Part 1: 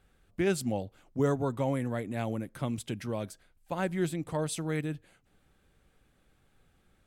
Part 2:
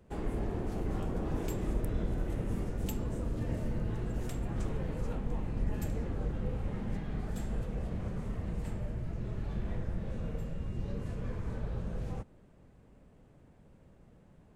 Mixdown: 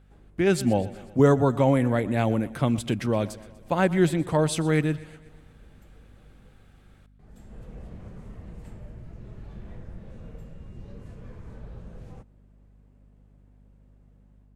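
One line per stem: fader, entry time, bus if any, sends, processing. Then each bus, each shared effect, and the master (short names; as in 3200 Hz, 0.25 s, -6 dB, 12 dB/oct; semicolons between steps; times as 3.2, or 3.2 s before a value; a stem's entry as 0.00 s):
+1.5 dB, 0.00 s, no send, echo send -19 dB, high shelf 6600 Hz -7.5 dB
-13.5 dB, 0.00 s, muted 6.53–7.19, no send, no echo send, auto duck -16 dB, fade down 0.35 s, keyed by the first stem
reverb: off
echo: feedback echo 0.122 s, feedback 57%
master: AGC gain up to 8 dB; hum 50 Hz, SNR 28 dB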